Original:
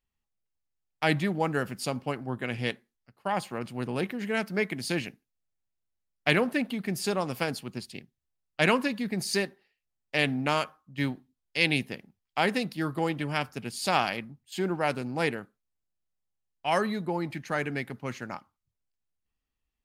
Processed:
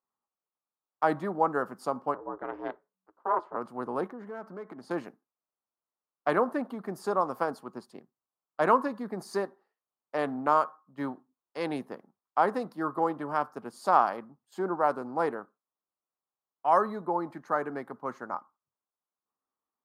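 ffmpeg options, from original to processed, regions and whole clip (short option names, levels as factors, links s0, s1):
-filter_complex "[0:a]asettb=1/sr,asplit=3[s0][s1][s2];[s0]atrim=end=2.144[s3];[s1]atrim=start=2.14:end=3.56,asetpts=PTS-STARTPTS,afade=t=in:d=0.004:c=qsin,afade=t=out:st=1.416:d=0.004:c=qsin,lowpass=3000,equalizer=f=700:w=7.1:g=5,aeval=exprs='val(0)*sin(2*PI*190*n/s)':c=same[s4];[s2]atrim=start=3.556[s5];[s3][s4]acrossfade=d=0.004:c1=hsin:c2=qsin[s6];[s6][s5]acrossfade=d=0.004:c1=qsin:c2=hsin,asettb=1/sr,asplit=3[s7][s8][s9];[s7]atrim=end=4.084[s10];[s8]atrim=start=4.08:end=4.91,asetpts=PTS-STARTPTS,afade=t=in:d=0.004:c=qsin,afade=t=out:st=0.826:d=0.004:c=qsin,lowpass=f=2500:p=1,acompressor=threshold=0.0178:ratio=4:attack=3.2:release=140:knee=1:detection=peak,volume=39.8,asoftclip=hard,volume=0.0251[s11];[s9]atrim=start=4.906[s12];[s10][s11]acrossfade=d=0.004:c1=hsin:c2=qsin[s13];[s13][s12]acrossfade=d=0.004:c1=qsin:c2=hsin,highpass=300,highshelf=f=1700:t=q:w=3:g=-13.5"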